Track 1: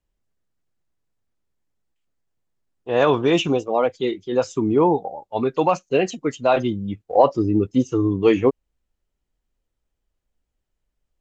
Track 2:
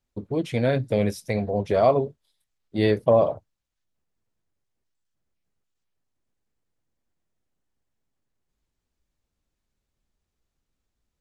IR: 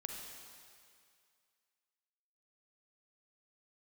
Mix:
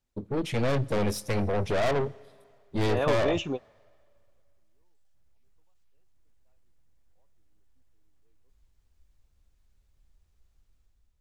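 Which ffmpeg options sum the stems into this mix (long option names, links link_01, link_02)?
-filter_complex "[0:a]volume=-11dB[link_01];[1:a]asubboost=boost=4:cutoff=100,dynaudnorm=framelen=190:gausssize=5:maxgain=6dB,aeval=exprs='(tanh(15.8*val(0)+0.45)-tanh(0.45))/15.8':channel_layout=same,volume=-0.5dB,asplit=3[link_02][link_03][link_04];[link_03]volume=-17.5dB[link_05];[link_04]apad=whole_len=494139[link_06];[link_01][link_06]sidechaingate=range=-53dB:threshold=-54dB:ratio=16:detection=peak[link_07];[2:a]atrim=start_sample=2205[link_08];[link_05][link_08]afir=irnorm=-1:irlink=0[link_09];[link_07][link_02][link_09]amix=inputs=3:normalize=0"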